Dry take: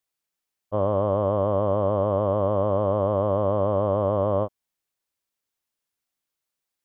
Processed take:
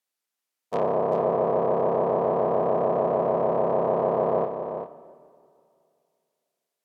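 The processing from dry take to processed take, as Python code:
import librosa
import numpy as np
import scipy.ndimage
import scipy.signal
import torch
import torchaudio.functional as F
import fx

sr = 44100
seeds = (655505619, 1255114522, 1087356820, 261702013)

y = fx.cycle_switch(x, sr, every=3, mode='inverted')
y = fx.env_lowpass_down(y, sr, base_hz=1200.0, full_db=-18.0)
y = scipy.signal.sosfilt(scipy.signal.butter(2, 250.0, 'highpass', fs=sr, output='sos'), y)
y = y + 10.0 ** (-8.0 / 20.0) * np.pad(y, (int(393 * sr / 1000.0), 0))[:len(y)]
y = fx.rev_freeverb(y, sr, rt60_s=2.4, hf_ratio=0.75, predelay_ms=35, drr_db=14.5)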